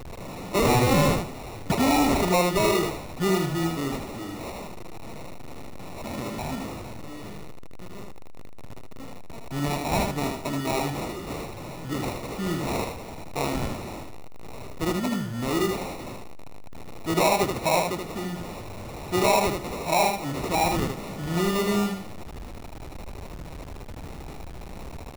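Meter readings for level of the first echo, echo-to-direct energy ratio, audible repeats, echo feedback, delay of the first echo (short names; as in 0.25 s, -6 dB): -4.5 dB, -4.5 dB, 2, 15%, 78 ms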